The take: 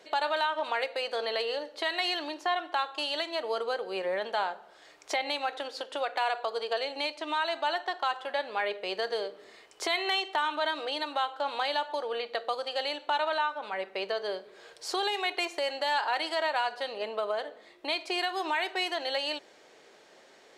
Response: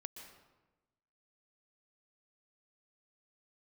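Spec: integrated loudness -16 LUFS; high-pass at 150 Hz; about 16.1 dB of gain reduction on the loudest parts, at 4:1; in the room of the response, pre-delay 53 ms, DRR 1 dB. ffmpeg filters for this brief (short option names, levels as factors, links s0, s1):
-filter_complex "[0:a]highpass=150,acompressor=threshold=0.00562:ratio=4,asplit=2[s0][s1];[1:a]atrim=start_sample=2205,adelay=53[s2];[s1][s2]afir=irnorm=-1:irlink=0,volume=1.41[s3];[s0][s3]amix=inputs=2:normalize=0,volume=22.4"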